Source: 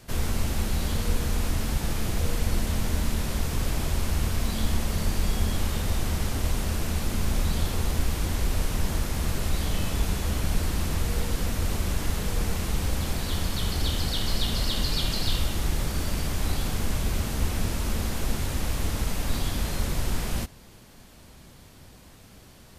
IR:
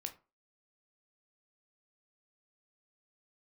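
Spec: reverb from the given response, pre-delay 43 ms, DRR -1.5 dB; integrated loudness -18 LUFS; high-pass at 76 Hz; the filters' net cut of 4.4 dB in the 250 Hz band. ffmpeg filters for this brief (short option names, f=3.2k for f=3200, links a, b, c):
-filter_complex "[0:a]highpass=76,equalizer=f=250:t=o:g=-6,asplit=2[a][b];[1:a]atrim=start_sample=2205,adelay=43[c];[b][c]afir=irnorm=-1:irlink=0,volume=4dB[d];[a][d]amix=inputs=2:normalize=0,volume=10dB"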